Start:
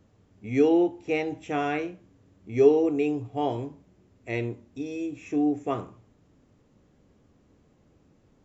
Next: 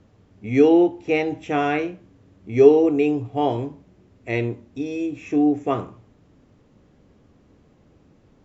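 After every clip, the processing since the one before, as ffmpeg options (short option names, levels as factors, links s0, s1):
-af "lowpass=6000,volume=2"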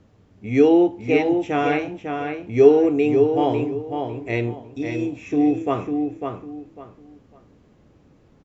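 -filter_complex "[0:a]asplit=2[s0][s1];[s1]adelay=550,lowpass=f=3900:p=1,volume=0.531,asplit=2[s2][s3];[s3]adelay=550,lowpass=f=3900:p=1,volume=0.25,asplit=2[s4][s5];[s5]adelay=550,lowpass=f=3900:p=1,volume=0.25[s6];[s0][s2][s4][s6]amix=inputs=4:normalize=0"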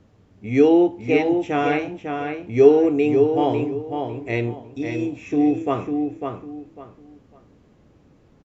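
-af "aresample=32000,aresample=44100"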